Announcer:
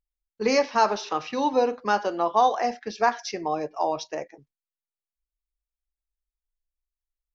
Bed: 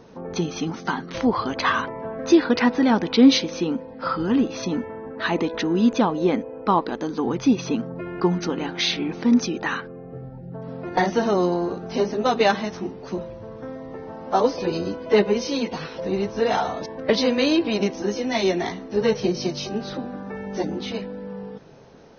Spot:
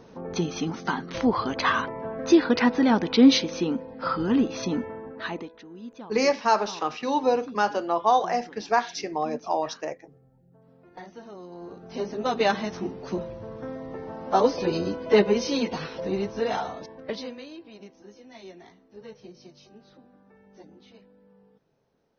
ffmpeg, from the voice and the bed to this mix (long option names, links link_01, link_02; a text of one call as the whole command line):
ffmpeg -i stem1.wav -i stem2.wav -filter_complex "[0:a]adelay=5700,volume=-0.5dB[link_01];[1:a]volume=19.5dB,afade=type=out:start_time=4.9:duration=0.64:silence=0.0944061,afade=type=in:start_time=11.48:duration=1.45:silence=0.0841395,afade=type=out:start_time=15.71:duration=1.75:silence=0.0749894[link_02];[link_01][link_02]amix=inputs=2:normalize=0" out.wav